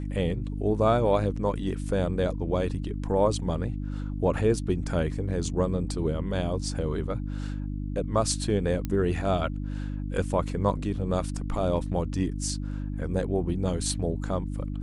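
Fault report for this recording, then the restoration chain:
hum 50 Hz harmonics 6 -32 dBFS
8.85 pop -17 dBFS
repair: de-click; de-hum 50 Hz, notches 6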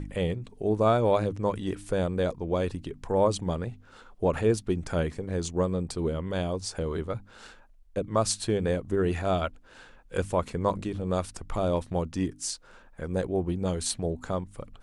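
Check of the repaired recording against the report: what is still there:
8.85 pop

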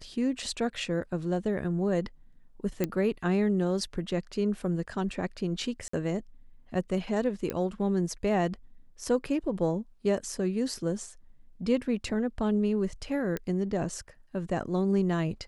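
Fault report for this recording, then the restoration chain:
2.84 pop -14 dBFS
5.88–5.93 gap 54 ms
7.5 pop -17 dBFS
13.37 pop -18 dBFS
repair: de-click; interpolate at 5.88, 54 ms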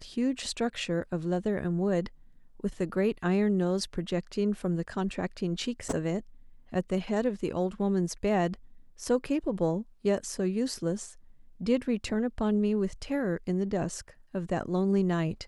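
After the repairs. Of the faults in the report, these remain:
none

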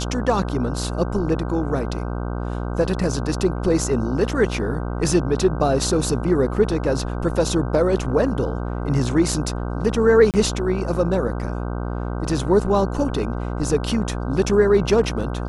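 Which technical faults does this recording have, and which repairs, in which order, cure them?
buzz 60 Hz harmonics 26 -26 dBFS
10.31–10.34 gap 28 ms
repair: de-hum 60 Hz, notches 26; interpolate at 10.31, 28 ms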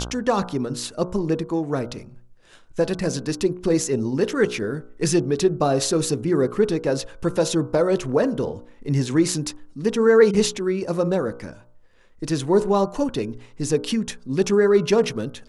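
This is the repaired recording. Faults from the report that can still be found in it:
none

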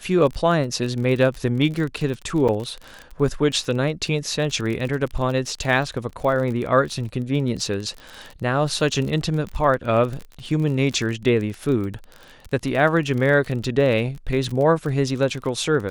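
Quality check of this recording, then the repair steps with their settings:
crackle 31/s -27 dBFS
2.48–2.49 gap 6.2 ms
6.1–6.11 gap 6.3 ms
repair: de-click; interpolate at 2.48, 6.2 ms; interpolate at 6.1, 6.3 ms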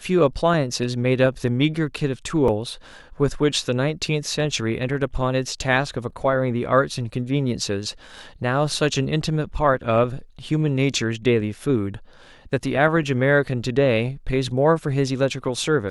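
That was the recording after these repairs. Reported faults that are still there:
none

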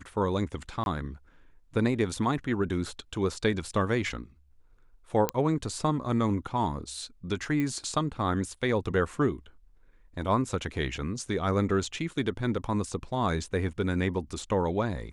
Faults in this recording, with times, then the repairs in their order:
0.84–0.86 gap 21 ms
5.29 pop -10 dBFS
7.6 pop -19 dBFS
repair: de-click; interpolate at 0.84, 21 ms

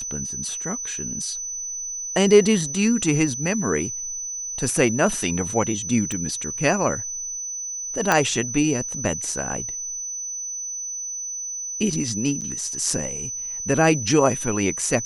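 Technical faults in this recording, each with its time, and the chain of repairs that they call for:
tone 6000 Hz -28 dBFS
6.12 pop -16 dBFS
8.12 pop -4 dBFS
12.41–12.42 gap 7.6 ms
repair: de-click; notch 6000 Hz, Q 30; interpolate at 12.41, 7.6 ms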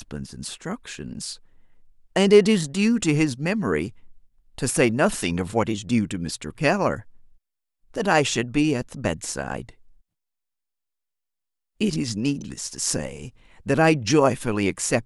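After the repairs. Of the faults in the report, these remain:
none

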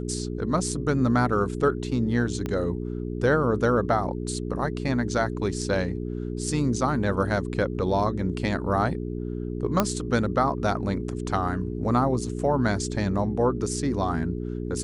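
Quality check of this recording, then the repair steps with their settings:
hum 60 Hz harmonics 7 -31 dBFS
2.46 pop -17 dBFS
9.8 pop -6 dBFS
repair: de-click; de-hum 60 Hz, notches 7

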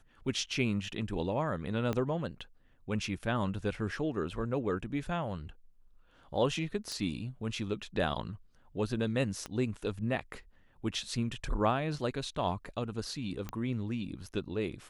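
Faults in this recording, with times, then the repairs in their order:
1.93 pop -20 dBFS
6.92 pop -25 dBFS
9.46 pop -24 dBFS
13.49 pop -23 dBFS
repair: de-click

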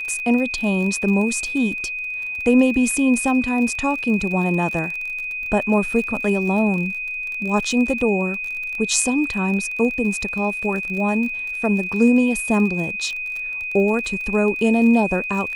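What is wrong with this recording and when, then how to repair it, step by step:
crackle 39/s -27 dBFS
tone 2500 Hz -25 dBFS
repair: de-click; notch 2500 Hz, Q 30

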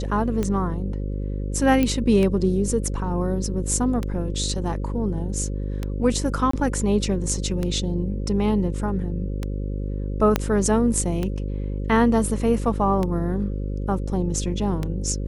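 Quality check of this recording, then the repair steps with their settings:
buzz 50 Hz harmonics 11 -27 dBFS
tick 33 1/3 rpm -13 dBFS
1.83 pop -9 dBFS
6.51–6.53 gap 24 ms
10.36 pop -5 dBFS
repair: de-click; de-hum 50 Hz, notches 11; interpolate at 6.51, 24 ms

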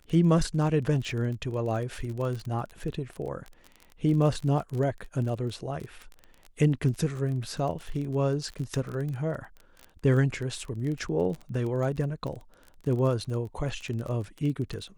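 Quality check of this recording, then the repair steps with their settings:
crackle 28/s -33 dBFS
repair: de-click

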